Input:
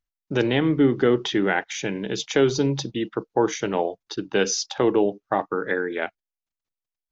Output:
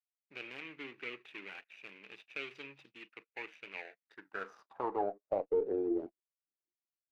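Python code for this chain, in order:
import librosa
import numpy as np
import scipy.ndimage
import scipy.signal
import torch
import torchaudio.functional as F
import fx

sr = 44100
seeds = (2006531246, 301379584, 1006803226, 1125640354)

y = scipy.ndimage.median_filter(x, 41, mode='constant')
y = fx.filter_sweep_bandpass(y, sr, from_hz=2500.0, to_hz=340.0, start_s=3.84, end_s=5.83, q=6.0)
y = fx.cheby_harmonics(y, sr, harmonics=(2,), levels_db=(-22,), full_scale_db=-23.0)
y = F.gain(torch.from_numpy(y), 2.0).numpy()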